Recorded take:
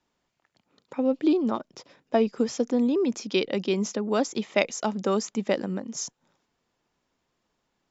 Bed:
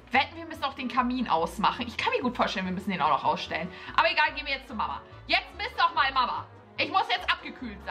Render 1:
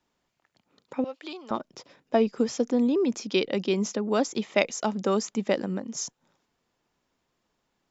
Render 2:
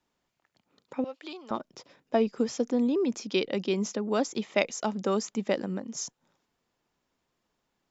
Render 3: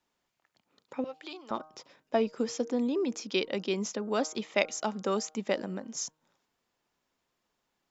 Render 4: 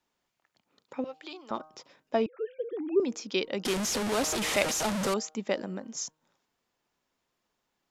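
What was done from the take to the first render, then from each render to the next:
1.04–1.51 HPF 1000 Hz
gain -2.5 dB
low shelf 390 Hz -5.5 dB; de-hum 155.8 Hz, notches 10
2.26–3 sine-wave speech; 3.65–5.14 delta modulation 64 kbps, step -24 dBFS

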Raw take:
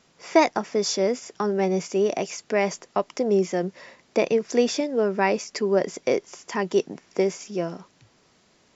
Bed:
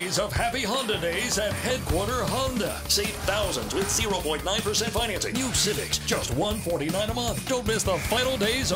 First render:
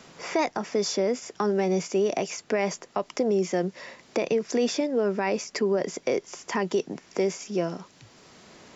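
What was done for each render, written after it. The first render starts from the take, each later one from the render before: limiter -15.5 dBFS, peak gain reduction 10 dB; three-band squash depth 40%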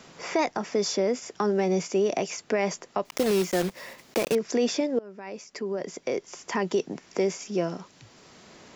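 3.05–4.37 block floating point 3-bit; 4.99–6.66 fade in, from -22.5 dB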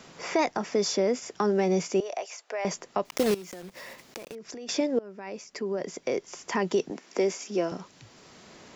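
2–2.65 ladder high-pass 490 Hz, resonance 30%; 3.34–4.69 compressor 8:1, threshold -38 dBFS; 6.9–7.72 HPF 210 Hz 24 dB/oct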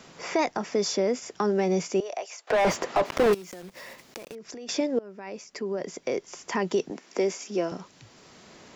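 2.47–3.33 overdrive pedal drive 31 dB, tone 1300 Hz, clips at -13 dBFS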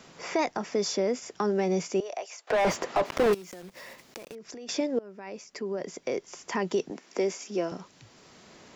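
gain -2 dB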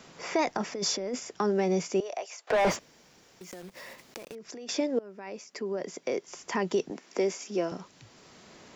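0.45–1.23 negative-ratio compressor -31 dBFS; 2.79–3.41 room tone; 4.49–6.28 HPF 150 Hz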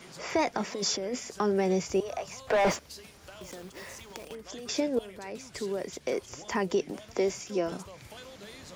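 add bed -23 dB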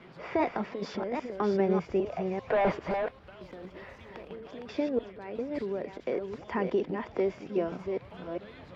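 reverse delay 0.399 s, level -5 dB; air absorption 400 m

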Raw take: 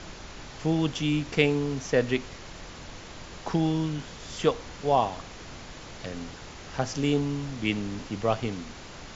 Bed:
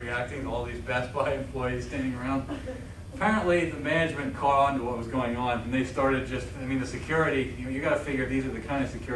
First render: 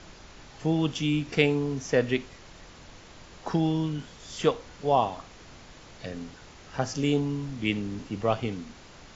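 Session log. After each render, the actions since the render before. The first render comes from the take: noise print and reduce 6 dB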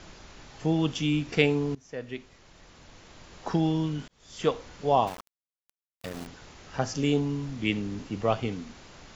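1.75–3.46 fade in, from -21 dB; 4.08–4.57 fade in; 5.07–6.27 sample gate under -36 dBFS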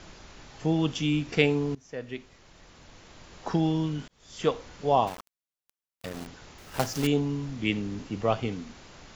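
6.58–7.09 block floating point 3-bit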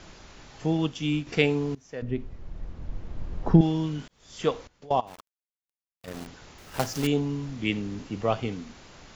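0.77–1.27 upward expander, over -34 dBFS; 2.02–3.61 tilt -4.5 dB/oct; 4.67–6.08 level quantiser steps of 22 dB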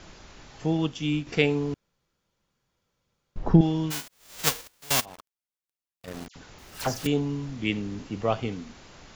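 1.74–3.36 room tone; 3.9–5.04 spectral whitening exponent 0.1; 6.28–7.06 dispersion lows, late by 75 ms, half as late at 2300 Hz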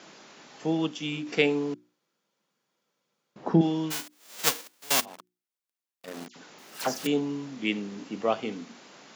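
HPF 190 Hz 24 dB/oct; notches 60/120/180/240/300/360 Hz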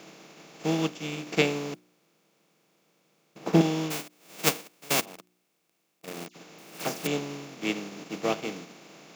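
per-bin compression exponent 0.4; upward expander 2.5:1, over -34 dBFS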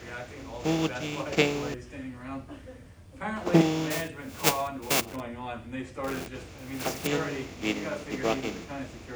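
add bed -9 dB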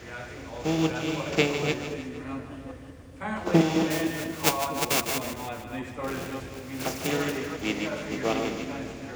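reverse delay 0.194 s, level -5.5 dB; split-band echo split 510 Hz, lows 0.247 s, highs 0.153 s, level -10 dB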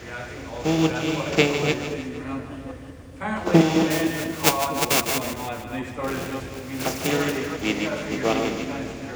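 gain +4.5 dB

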